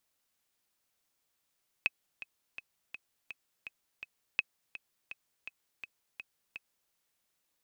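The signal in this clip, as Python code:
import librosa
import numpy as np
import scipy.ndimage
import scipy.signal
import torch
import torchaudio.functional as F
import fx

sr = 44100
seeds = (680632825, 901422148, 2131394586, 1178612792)

y = fx.click_track(sr, bpm=166, beats=7, bars=2, hz=2560.0, accent_db=15.0, level_db=-14.0)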